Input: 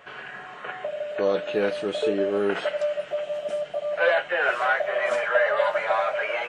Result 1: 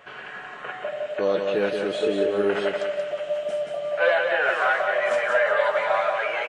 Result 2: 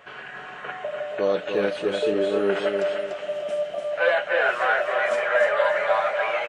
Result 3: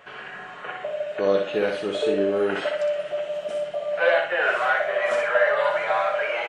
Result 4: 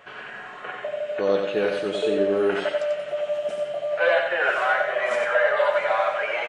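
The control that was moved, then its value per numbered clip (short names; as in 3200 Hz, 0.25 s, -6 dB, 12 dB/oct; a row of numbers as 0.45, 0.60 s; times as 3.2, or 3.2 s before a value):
feedback echo, time: 180, 294, 61, 91 ms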